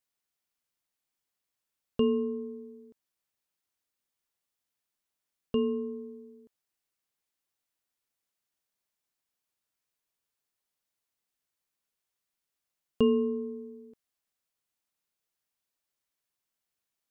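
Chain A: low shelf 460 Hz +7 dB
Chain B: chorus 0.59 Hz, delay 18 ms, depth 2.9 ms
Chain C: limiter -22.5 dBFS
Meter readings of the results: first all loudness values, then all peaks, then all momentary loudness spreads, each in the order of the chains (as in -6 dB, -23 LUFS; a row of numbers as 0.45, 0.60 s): -26.0, -35.5, -33.5 LUFS; -9.0, -17.5, -22.5 dBFS; 20, 18, 19 LU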